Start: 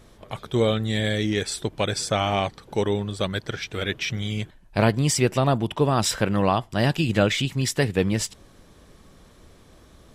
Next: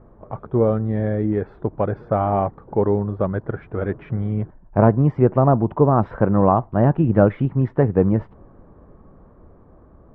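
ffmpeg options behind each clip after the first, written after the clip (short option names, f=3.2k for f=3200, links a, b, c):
-af "dynaudnorm=f=700:g=7:m=4dB,lowpass=f=1.2k:w=0.5412,lowpass=f=1.2k:w=1.3066,volume=3.5dB"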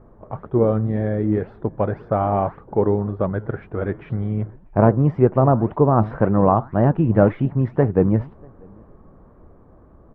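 -filter_complex "[0:a]asplit=2[a][b];[b]adelay=641.4,volume=-29dB,highshelf=f=4k:g=-14.4[c];[a][c]amix=inputs=2:normalize=0,flanger=delay=2.4:depth=7.1:regen=87:speed=1.9:shape=sinusoidal,volume=4.5dB"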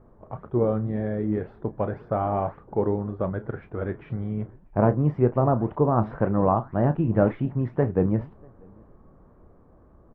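-filter_complex "[0:a]asplit=2[a][b];[b]adelay=33,volume=-12.5dB[c];[a][c]amix=inputs=2:normalize=0,volume=-5.5dB"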